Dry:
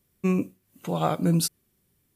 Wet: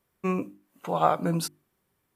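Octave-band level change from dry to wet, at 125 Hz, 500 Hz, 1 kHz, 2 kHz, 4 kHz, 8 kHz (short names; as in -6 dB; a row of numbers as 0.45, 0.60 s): -6.0, +1.0, +5.0, +1.0, -4.5, -6.5 dB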